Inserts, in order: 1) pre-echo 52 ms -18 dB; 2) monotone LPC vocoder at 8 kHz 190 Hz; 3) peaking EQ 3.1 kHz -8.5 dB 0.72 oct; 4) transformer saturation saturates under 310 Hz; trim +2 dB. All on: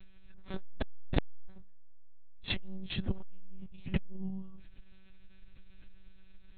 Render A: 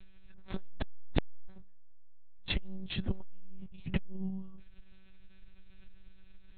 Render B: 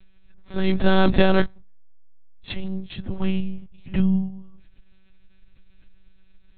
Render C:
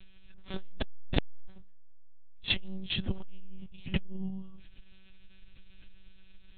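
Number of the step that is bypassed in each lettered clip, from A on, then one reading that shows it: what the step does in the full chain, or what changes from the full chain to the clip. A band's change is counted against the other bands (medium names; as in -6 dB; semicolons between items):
1, momentary loudness spread change -1 LU; 4, crest factor change -5.5 dB; 3, 4 kHz band +6.0 dB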